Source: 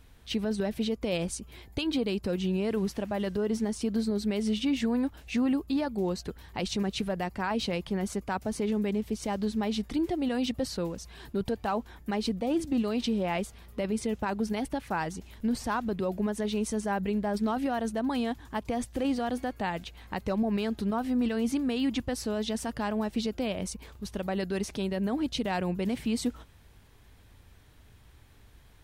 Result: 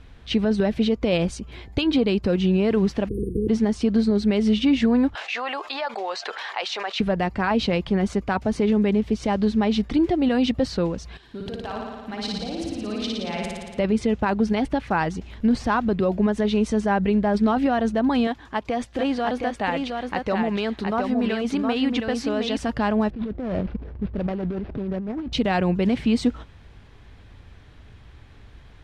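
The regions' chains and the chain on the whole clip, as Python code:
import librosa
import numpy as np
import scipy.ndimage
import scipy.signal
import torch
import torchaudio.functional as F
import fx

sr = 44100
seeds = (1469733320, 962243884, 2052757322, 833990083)

y = fx.spec_clip(x, sr, under_db=23, at=(3.07, 3.48), fade=0.02)
y = fx.brickwall_bandstop(y, sr, low_hz=490.0, high_hz=8600.0, at=(3.07, 3.48), fade=0.02)
y = fx.chain(y, sr, fx.highpass(hz=680.0, slope=24),
    fx.air_absorb(metres=62.0),
    fx.env_flatten(amount_pct=70), at=(5.15, 7.0))
y = fx.chain(y, sr, fx.level_steps(step_db=21),
    fx.high_shelf(hz=2500.0, db=9.5),
    fx.room_flutter(wall_m=9.8, rt60_s=1.5), at=(11.17, 13.79))
y = fx.chain(y, sr, fx.low_shelf(hz=240.0, db=-11.5),
    fx.echo_single(ms=716, db=-4.5), at=(18.27, 22.57))
y = fx.chain(y, sr, fx.median_filter(points=41),
    fx.over_compress(threshold_db=-36.0, ratio=-1.0),
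    fx.resample_linear(factor=6), at=(23.1, 25.33))
y = scipy.signal.sosfilt(scipy.signal.butter(2, 5400.0, 'lowpass', fs=sr, output='sos'), y)
y = fx.bass_treble(y, sr, bass_db=1, treble_db=-4)
y = fx.notch(y, sr, hz=920.0, q=27.0)
y = F.gain(torch.from_numpy(y), 8.5).numpy()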